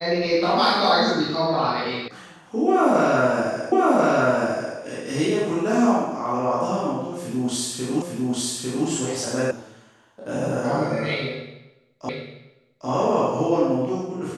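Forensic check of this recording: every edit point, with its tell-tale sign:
2.08 s: sound stops dead
3.72 s: repeat of the last 1.04 s
8.02 s: repeat of the last 0.85 s
9.51 s: sound stops dead
12.09 s: repeat of the last 0.8 s

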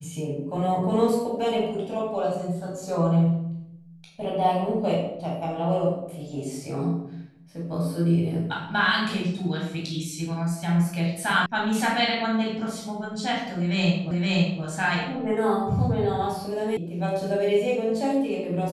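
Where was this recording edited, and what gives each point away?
11.46 s: sound stops dead
14.11 s: repeat of the last 0.52 s
16.77 s: sound stops dead

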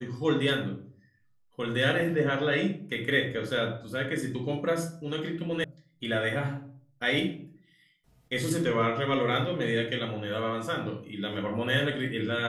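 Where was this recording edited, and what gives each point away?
5.64 s: sound stops dead

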